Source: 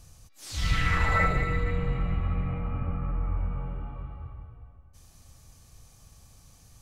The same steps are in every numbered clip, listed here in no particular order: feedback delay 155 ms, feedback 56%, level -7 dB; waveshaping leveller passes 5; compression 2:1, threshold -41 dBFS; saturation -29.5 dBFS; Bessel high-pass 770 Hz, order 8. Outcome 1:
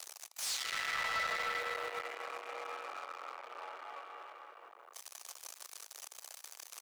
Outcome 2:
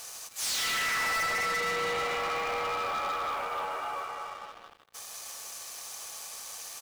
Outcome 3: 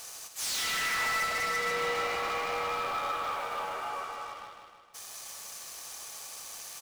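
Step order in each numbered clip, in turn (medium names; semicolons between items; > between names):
feedback delay > waveshaping leveller > compression > Bessel high-pass > saturation; Bessel high-pass > compression > saturation > feedback delay > waveshaping leveller; Bessel high-pass > compression > waveshaping leveller > saturation > feedback delay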